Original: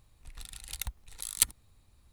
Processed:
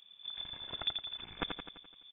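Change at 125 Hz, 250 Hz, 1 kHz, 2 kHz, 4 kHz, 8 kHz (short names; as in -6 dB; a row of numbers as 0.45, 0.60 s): -6.5 dB, +10.5 dB, +6.5 dB, -0.5 dB, +4.5 dB, under -40 dB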